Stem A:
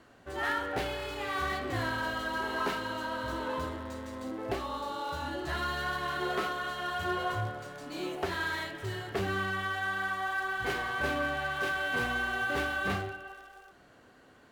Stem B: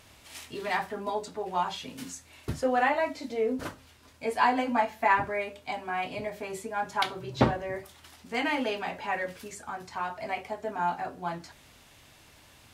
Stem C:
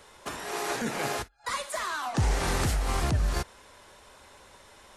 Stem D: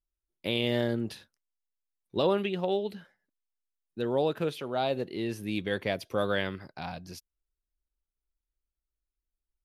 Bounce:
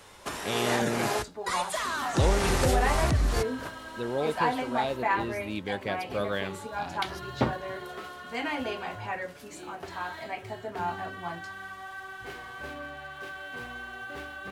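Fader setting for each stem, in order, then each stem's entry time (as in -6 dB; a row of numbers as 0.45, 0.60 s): -8.5, -3.5, +1.0, -2.5 dB; 1.60, 0.00, 0.00, 0.00 s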